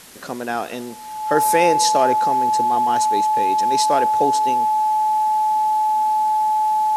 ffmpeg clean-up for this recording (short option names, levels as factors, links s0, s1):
-af "adeclick=t=4,bandreject=f=860:w=30,afwtdn=0.0079"